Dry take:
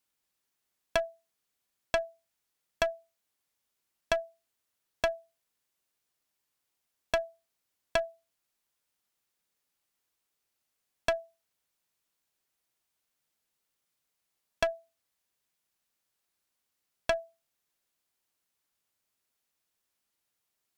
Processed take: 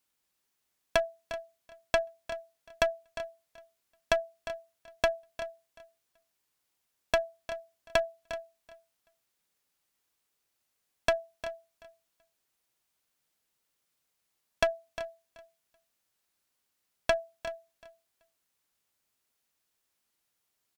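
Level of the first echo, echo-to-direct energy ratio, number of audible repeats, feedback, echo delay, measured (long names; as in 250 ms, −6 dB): −13.5 dB, −12.0 dB, 2, repeats not evenly spaced, 354 ms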